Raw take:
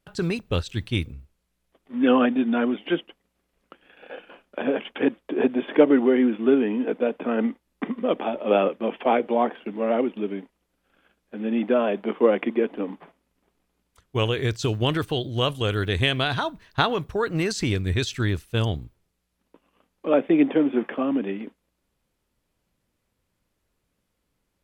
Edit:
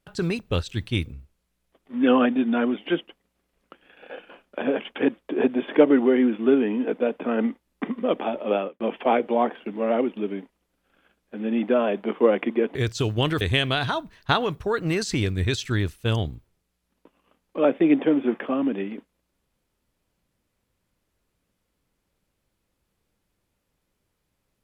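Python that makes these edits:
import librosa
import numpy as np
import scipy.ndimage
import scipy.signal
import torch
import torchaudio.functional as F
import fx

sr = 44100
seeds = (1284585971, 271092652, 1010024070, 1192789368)

y = fx.edit(x, sr, fx.fade_out_span(start_s=8.4, length_s=0.4),
    fx.cut(start_s=12.75, length_s=1.64),
    fx.cut(start_s=15.05, length_s=0.85), tone=tone)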